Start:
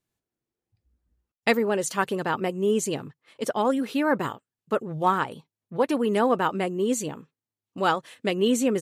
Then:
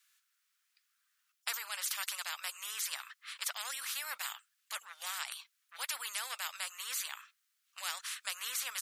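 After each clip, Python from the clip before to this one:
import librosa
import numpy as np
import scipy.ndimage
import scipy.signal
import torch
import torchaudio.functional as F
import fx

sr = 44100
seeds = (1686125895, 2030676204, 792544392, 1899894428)

y = scipy.signal.sosfilt(scipy.signal.ellip(4, 1.0, 70, 1300.0, 'highpass', fs=sr, output='sos'), x)
y = fx.spectral_comp(y, sr, ratio=4.0)
y = F.gain(torch.from_numpy(y), -8.0).numpy()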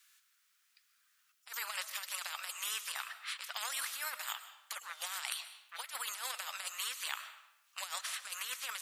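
y = fx.over_compress(x, sr, threshold_db=-42.0, ratio=-0.5)
y = fx.rev_freeverb(y, sr, rt60_s=0.86, hf_ratio=0.8, predelay_ms=90, drr_db=11.5)
y = F.gain(torch.from_numpy(y), 2.0).numpy()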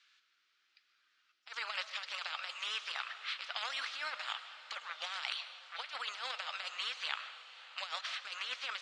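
y = fx.cabinet(x, sr, low_hz=250.0, low_slope=12, high_hz=4600.0, hz=(340.0, 1000.0, 1800.0), db=(7, -4, -3))
y = fx.echo_diffused(y, sr, ms=562, feedback_pct=61, wet_db=-16)
y = F.gain(torch.from_numpy(y), 3.0).numpy()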